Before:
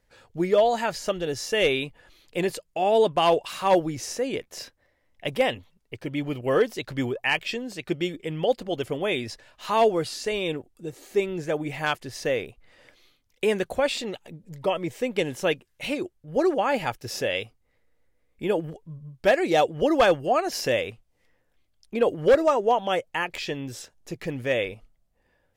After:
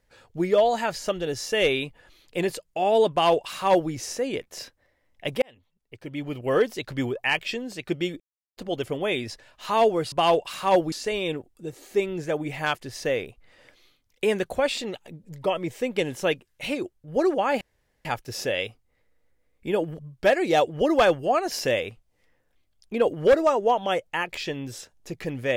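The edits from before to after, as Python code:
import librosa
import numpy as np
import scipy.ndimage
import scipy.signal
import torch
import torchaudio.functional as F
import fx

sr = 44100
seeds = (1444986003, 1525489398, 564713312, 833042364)

y = fx.edit(x, sr, fx.duplicate(start_s=3.11, length_s=0.8, to_s=10.12),
    fx.fade_in_span(start_s=5.42, length_s=1.16),
    fx.silence(start_s=8.2, length_s=0.37),
    fx.insert_room_tone(at_s=16.81, length_s=0.44),
    fx.cut(start_s=18.75, length_s=0.25), tone=tone)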